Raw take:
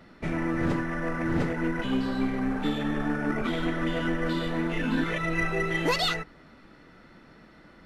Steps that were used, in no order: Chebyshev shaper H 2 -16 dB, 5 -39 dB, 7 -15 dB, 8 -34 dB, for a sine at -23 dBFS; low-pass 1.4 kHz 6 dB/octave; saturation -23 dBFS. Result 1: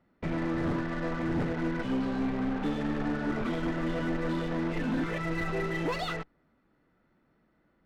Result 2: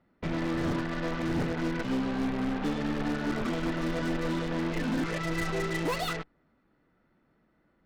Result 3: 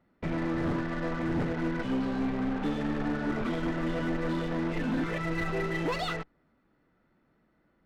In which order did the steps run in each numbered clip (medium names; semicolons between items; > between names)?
Chebyshev shaper > saturation > low-pass; low-pass > Chebyshev shaper > saturation; Chebyshev shaper > low-pass > saturation